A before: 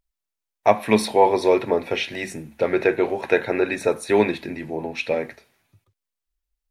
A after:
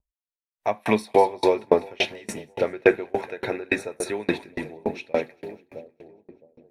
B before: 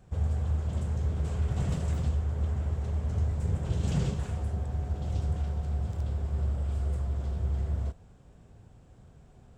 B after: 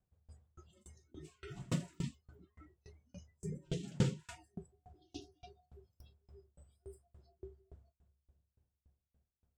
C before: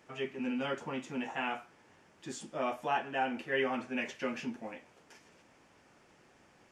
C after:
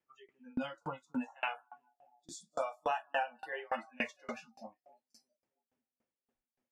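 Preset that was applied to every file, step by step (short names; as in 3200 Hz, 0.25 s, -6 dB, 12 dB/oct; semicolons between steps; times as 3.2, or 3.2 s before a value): split-band echo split 750 Hz, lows 0.663 s, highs 0.199 s, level -13 dB; spectral noise reduction 29 dB; dB-ramp tremolo decaying 3.5 Hz, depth 32 dB; gain +5 dB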